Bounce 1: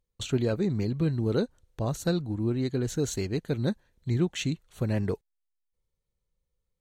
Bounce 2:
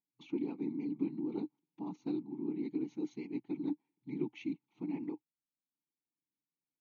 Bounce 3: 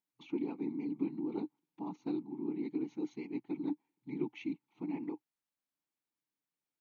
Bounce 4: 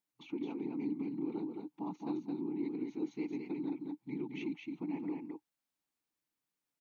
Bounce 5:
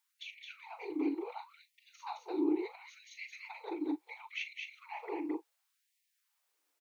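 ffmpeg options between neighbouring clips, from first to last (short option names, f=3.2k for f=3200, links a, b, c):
-filter_complex "[0:a]afftfilt=real='hypot(re,im)*cos(2*PI*random(0))':imag='hypot(re,im)*sin(2*PI*random(1))':win_size=512:overlap=0.75,asplit=3[a][b][c];[a]bandpass=f=300:t=q:w=8,volume=0dB[d];[b]bandpass=f=870:t=q:w=8,volume=-6dB[e];[c]bandpass=f=2.24k:t=q:w=8,volume=-9dB[f];[d][e][f]amix=inputs=3:normalize=0,afftfilt=real='re*between(b*sr/4096,120,6800)':imag='im*between(b*sr/4096,120,6800)':win_size=4096:overlap=0.75,volume=6.5dB"
-af "equalizer=f=1.1k:t=o:w=2.9:g=6,volume=-2dB"
-af "alimiter=level_in=6.5dB:limit=-24dB:level=0:latency=1:release=163,volume=-6.5dB,aecho=1:1:217:0.631,volume=1dB"
-filter_complex "[0:a]asplit=2[a][b];[b]adelay=39,volume=-12dB[c];[a][c]amix=inputs=2:normalize=0,afftfilt=real='re*gte(b*sr/1024,280*pow(1800/280,0.5+0.5*sin(2*PI*0.71*pts/sr)))':imag='im*gte(b*sr/1024,280*pow(1800/280,0.5+0.5*sin(2*PI*0.71*pts/sr)))':win_size=1024:overlap=0.75,volume=9.5dB"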